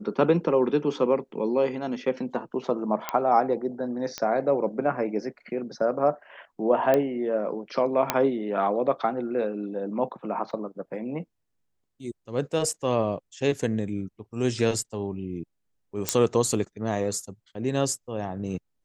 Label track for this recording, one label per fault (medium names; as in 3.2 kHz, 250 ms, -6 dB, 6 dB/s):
3.090000	3.090000	pop -11 dBFS
4.180000	4.180000	pop -15 dBFS
6.940000	6.940000	pop -11 dBFS
8.100000	8.100000	pop -5 dBFS
10.510000	10.510000	dropout 2.4 ms
16.090000	16.090000	pop -5 dBFS